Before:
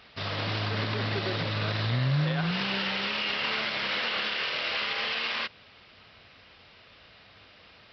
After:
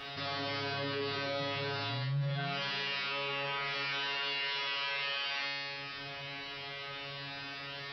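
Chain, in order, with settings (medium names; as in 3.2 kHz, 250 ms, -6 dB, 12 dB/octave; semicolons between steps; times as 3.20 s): 3.00–3.65 s: low-pass 2.6 kHz 6 dB/octave; feedback comb 140 Hz, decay 0.91 s, harmonics all, mix 100%; level flattener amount 70%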